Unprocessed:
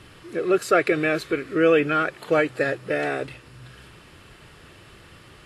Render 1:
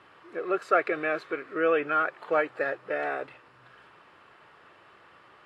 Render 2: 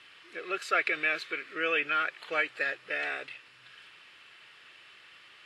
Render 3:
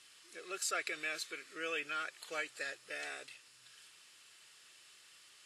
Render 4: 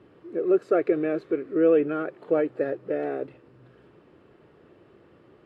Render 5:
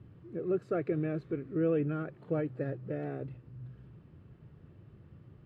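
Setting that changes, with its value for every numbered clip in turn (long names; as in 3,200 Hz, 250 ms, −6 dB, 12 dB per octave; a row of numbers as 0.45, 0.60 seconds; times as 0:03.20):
resonant band-pass, frequency: 1,000, 2,600, 7,100, 380, 130 Hertz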